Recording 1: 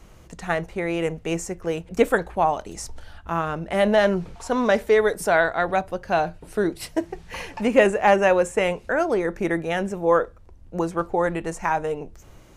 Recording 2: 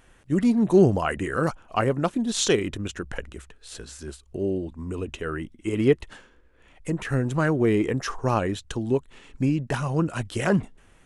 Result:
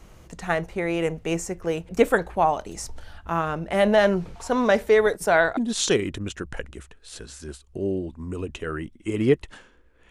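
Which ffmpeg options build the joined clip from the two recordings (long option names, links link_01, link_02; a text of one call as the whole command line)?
ffmpeg -i cue0.wav -i cue1.wav -filter_complex "[0:a]asettb=1/sr,asplit=3[link_01][link_02][link_03];[link_01]atrim=end=5.064[link_04];[link_02]atrim=start=5.06:end=5.57,asetpts=PTS-STARTPTS,afade=type=in:duration=0.004:curve=qsin,afade=type=out:start_time=0.506:duration=0.004:curve=qsin,agate=range=-11dB:threshold=-34dB:ratio=16:release=100:detection=peak[link_05];[link_03]atrim=start=5.566[link_06];[link_04][link_05]acrossfade=duration=0.004:curve1=hsin:curve2=qsin[link_07];[link_07][link_06]acrossfade=duration=0.004:curve1=qsin:curve2=hsin,apad=whole_dur=10.1,atrim=end=10.1,atrim=end=5.572[link_08];[1:a]atrim=start=2.158:end=6.69[link_09];[link_08][link_09]acrossfade=duration=0.004:curve1=hsin:curve2=hsin" out.wav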